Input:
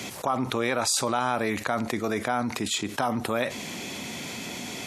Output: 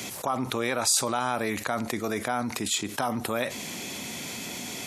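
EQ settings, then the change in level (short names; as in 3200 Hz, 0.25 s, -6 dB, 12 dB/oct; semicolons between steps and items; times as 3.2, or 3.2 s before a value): high shelf 7100 Hz +9 dB; -2.0 dB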